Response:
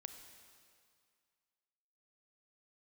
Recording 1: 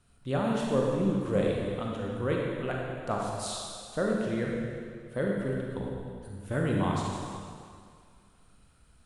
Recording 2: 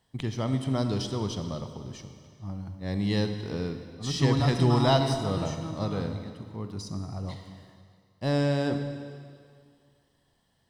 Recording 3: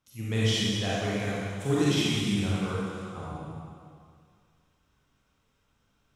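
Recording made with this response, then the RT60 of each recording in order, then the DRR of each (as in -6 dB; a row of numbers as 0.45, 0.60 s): 2; 2.1, 2.1, 2.1 s; -2.0, 7.0, -8.5 dB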